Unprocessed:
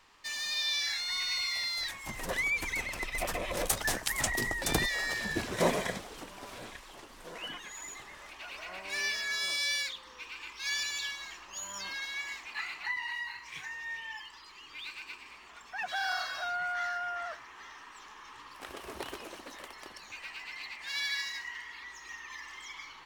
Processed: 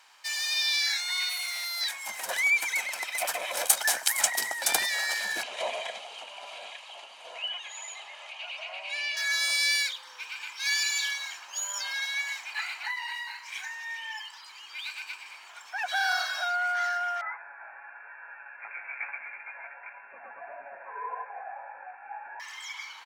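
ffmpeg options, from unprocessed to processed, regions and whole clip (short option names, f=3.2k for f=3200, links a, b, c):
-filter_complex "[0:a]asettb=1/sr,asplit=3[a][b][c];[a]atrim=end=1.294[d];[b]atrim=start=1.29:end=1.81,asetpts=PTS-STARTPTS,afade=t=in:d=0.004:c=qsin,afade=t=out:st=0.516:d=0.004:c=qsin,equalizer=f=7.6k:w=3.3:g=-13,asoftclip=type=hard:threshold=-34.5dB[e];[c]atrim=start=1.806[f];[d][e]acrossfade=d=0.004:c1=hsin:c2=qsin[g];[g][f]acrossfade=d=0.004:c1=qsin:c2=hsin,asettb=1/sr,asplit=3[h][i][j];[h]atrim=end=5.434[k];[i]atrim=start=5.43:end=9.17,asetpts=PTS-STARTPTS,afade=t=in:d=0.004:c=qsin,afade=t=out:st=3.736:d=0.004:c=qsin,highpass=f=210:w=0.5412,highpass=f=210:w=1.3066,equalizer=f=310:t=q:w=4:g=-8,equalizer=f=640:t=q:w=4:g=6,equalizer=f=1.8k:t=q:w=4:g=-4,equalizer=f=2.8k:t=q:w=4:g=10,equalizer=f=5.5k:t=q:w=4:g=-9,equalizer=f=7.9k:t=q:w=4:g=-9,lowpass=f=8.2k:w=0.5412,lowpass=f=8.2k:w=1.3066,bandreject=f=1.5k:w=6.2,acompressor=threshold=-43dB:ratio=1.5:attack=3.2:release=140:knee=1:detection=peak[l];[j]atrim=start=9.166[m];[k][l]acrossfade=d=0.004:c1=hsin:c2=qsin[n];[n][m]acrossfade=d=0.004:c1=qsin:c2=hsin,asettb=1/sr,asplit=3[o][p][q];[o]atrim=end=10.834[r];[p]atrim=start=10.83:end=11.33,asetpts=PTS-STARTPTS,afade=t=in:d=0.004:c=qsin,afade=t=out:st=0.496:d=0.004:c=qsin,highpass=260,asplit=2[s][t];[t]adelay=32,volume=-7.5dB[u];[s][u]amix=inputs=2:normalize=0,atrim=end_sample=22050[v];[q]atrim=start=11.326[w];[r][v]acrossfade=d=0.004:c1=hsin:c2=qsin[x];[x][w]acrossfade=d=0.004:c1=qsin:c2=hsin,asettb=1/sr,asplit=3[y][z][aa];[y]atrim=end=17.214[ab];[z]atrim=start=17.21:end=22.4,asetpts=PTS-STARTPTS,afade=t=in:d=0.004:c=qsin,afade=t=out:st=5.186:d=0.004:c=qsin,aecho=1:1:7:0.86,atrim=end_sample=228879,flanger=delay=15:depth=4.4:speed=1.6,lowpass=f=2.3k:t=q:w=0.5098,lowpass=f=2.3k:t=q:w=0.6013,lowpass=f=2.3k:t=q:w=0.9,lowpass=f=2.3k:t=q:w=2.563,afreqshift=-2700[ac];[aa]atrim=start=22.396[ad];[ab][ac]acrossfade=d=0.004:c1=hsin:c2=qsin[ae];[ae][ad]acrossfade=d=0.004:c1=qsin:c2=hsin,highpass=700,equalizer=f=11k:w=0.55:g=4.5,aecho=1:1:1.3:0.41,volume=4dB"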